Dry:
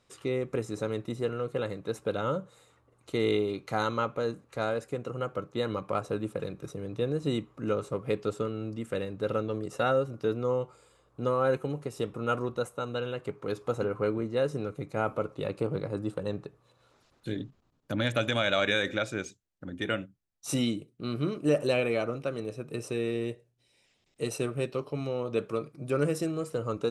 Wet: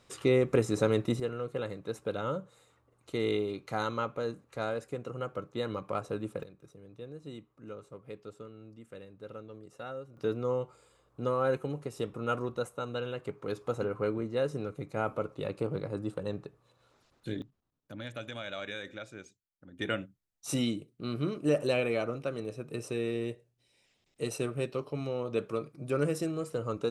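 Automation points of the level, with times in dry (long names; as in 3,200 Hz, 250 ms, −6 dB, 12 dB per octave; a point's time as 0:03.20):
+5.5 dB
from 0:01.20 −3.5 dB
from 0:06.43 −15 dB
from 0:10.17 −2.5 dB
from 0:17.42 −13 dB
from 0:19.79 −2 dB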